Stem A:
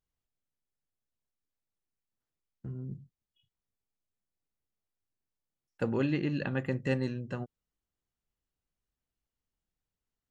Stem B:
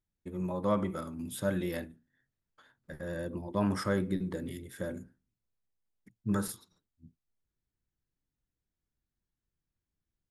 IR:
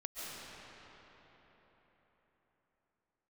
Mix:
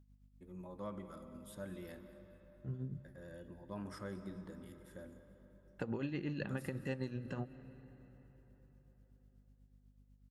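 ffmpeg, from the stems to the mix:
-filter_complex "[0:a]alimiter=limit=-23.5dB:level=0:latency=1:release=146,aeval=exprs='val(0)+0.000708*(sin(2*PI*50*n/s)+sin(2*PI*2*50*n/s)/2+sin(2*PI*3*50*n/s)/3+sin(2*PI*4*50*n/s)/4+sin(2*PI*5*50*n/s)/5)':channel_layout=same,tremolo=f=8.1:d=0.67,volume=2dB,asplit=2[link_01][link_02];[link_02]volume=-18.5dB[link_03];[1:a]adelay=150,volume=-16.5dB,asplit=3[link_04][link_05][link_06];[link_05]volume=-9.5dB[link_07];[link_06]volume=-16.5dB[link_08];[2:a]atrim=start_sample=2205[link_09];[link_03][link_07]amix=inputs=2:normalize=0[link_10];[link_10][link_09]afir=irnorm=-1:irlink=0[link_11];[link_08]aecho=0:1:214|428|642|856|1070|1284|1498:1|0.51|0.26|0.133|0.0677|0.0345|0.0176[link_12];[link_01][link_04][link_11][link_12]amix=inputs=4:normalize=0,acompressor=threshold=-38dB:ratio=2.5"

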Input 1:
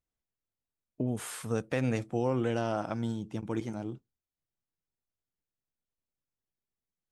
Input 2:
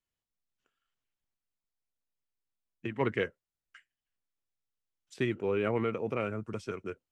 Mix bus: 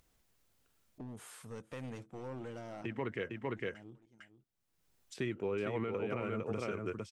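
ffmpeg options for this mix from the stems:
ffmpeg -i stem1.wav -i stem2.wav -filter_complex "[0:a]aeval=exprs='clip(val(0),-1,0.0398)':channel_layout=same,volume=-12.5dB,asplit=2[link_01][link_02];[link_02]volume=-22dB[link_03];[1:a]agate=range=-33dB:threshold=-54dB:ratio=3:detection=peak,volume=0.5dB,asplit=3[link_04][link_05][link_06];[link_05]volume=-5dB[link_07];[link_06]apad=whole_len=313678[link_08];[link_01][link_08]sidechaincompress=threshold=-45dB:ratio=8:attack=25:release=547[link_09];[link_03][link_07]amix=inputs=2:normalize=0,aecho=0:1:455:1[link_10];[link_09][link_04][link_10]amix=inputs=3:normalize=0,acompressor=mode=upward:threshold=-49dB:ratio=2.5,alimiter=level_in=3dB:limit=-24dB:level=0:latency=1:release=181,volume=-3dB" out.wav

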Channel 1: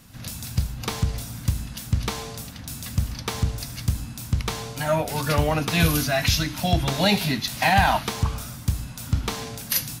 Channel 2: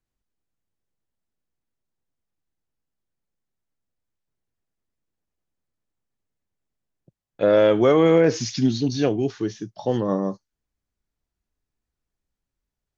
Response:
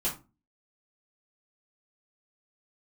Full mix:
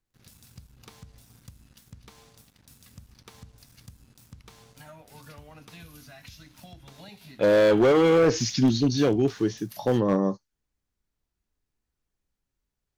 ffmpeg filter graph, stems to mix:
-filter_complex "[0:a]aeval=exprs='sgn(val(0))*max(abs(val(0))-0.00944,0)':channel_layout=same,acompressor=threshold=-28dB:ratio=6,volume=-16dB[link_01];[1:a]asoftclip=type=hard:threshold=-15.5dB,volume=1dB[link_02];[link_01][link_02]amix=inputs=2:normalize=0,equalizer=frequency=660:width_type=o:width=0.27:gain=-3"

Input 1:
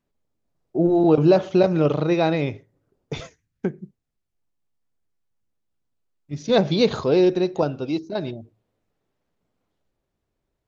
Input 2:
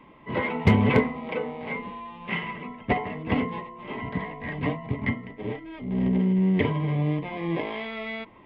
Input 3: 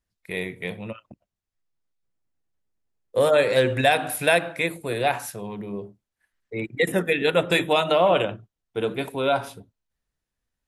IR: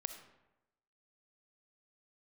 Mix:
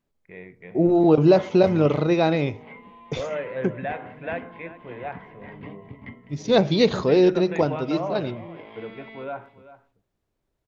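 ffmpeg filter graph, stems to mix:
-filter_complex "[0:a]volume=0dB[link_01];[1:a]acompressor=threshold=-40dB:ratio=1.5,adelay=1000,volume=-7.5dB,asplit=2[link_02][link_03];[link_03]volume=-20dB[link_04];[2:a]lowpass=frequency=2200:width=0.5412,lowpass=frequency=2200:width=1.3066,volume=-11dB,asplit=2[link_05][link_06];[link_06]volume=-15.5dB[link_07];[link_04][link_07]amix=inputs=2:normalize=0,aecho=0:1:388:1[link_08];[link_01][link_02][link_05][link_08]amix=inputs=4:normalize=0"

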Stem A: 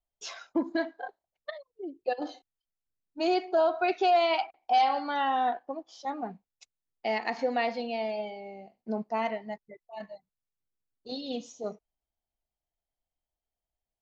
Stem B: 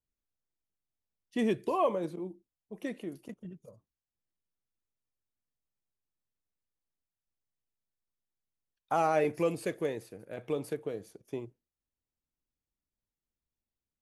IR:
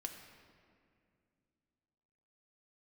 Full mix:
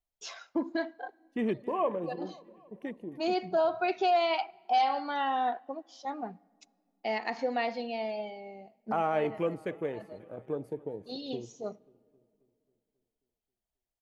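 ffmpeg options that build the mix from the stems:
-filter_complex "[0:a]volume=-3dB,asplit=2[link_01][link_02];[link_02]volume=-18dB[link_03];[1:a]afwtdn=0.00631,volume=-2dB,asplit=4[link_04][link_05][link_06][link_07];[link_05]volume=-20dB[link_08];[link_06]volume=-20dB[link_09];[link_07]apad=whole_len=618004[link_10];[link_01][link_10]sidechaincompress=threshold=-39dB:ratio=8:attack=11:release=371[link_11];[2:a]atrim=start_sample=2205[link_12];[link_03][link_08]amix=inputs=2:normalize=0[link_13];[link_13][link_12]afir=irnorm=-1:irlink=0[link_14];[link_09]aecho=0:1:269|538|807|1076|1345|1614|1883|2152|2421:1|0.57|0.325|0.185|0.106|0.0602|0.0343|0.0195|0.0111[link_15];[link_11][link_04][link_14][link_15]amix=inputs=4:normalize=0"

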